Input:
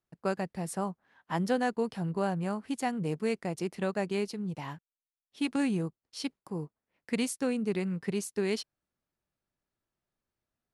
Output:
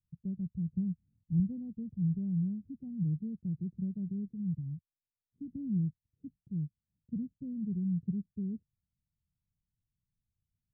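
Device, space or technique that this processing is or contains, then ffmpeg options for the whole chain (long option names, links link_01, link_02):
the neighbour's flat through the wall: -filter_complex "[0:a]asettb=1/sr,asplit=3[link_01][link_02][link_03];[link_01]atrim=end=0.694[link_04];[link_02]atrim=start=0.69:end=1.4,asetpts=PTS-STARTPTS,afade=type=in:duration=0.004:curve=qsin,afade=type=out:start_time=0.706:duration=0.004:curve=qsin,lowshelf=frequency=160:gain=8.5[link_05];[link_03]atrim=start=1.396[link_06];[link_04][link_05]acrossfade=duration=0.004:curve1=hsin:curve2=qsin[link_07];[link_07][link_06]acrossfade=duration=0.004:curve1=qsin:curve2=hsin,lowpass=frequency=170:width=0.5412,lowpass=frequency=170:width=1.3066,equalizer=frequency=89:width_type=o:width=0.77:gain=3.5,volume=6dB"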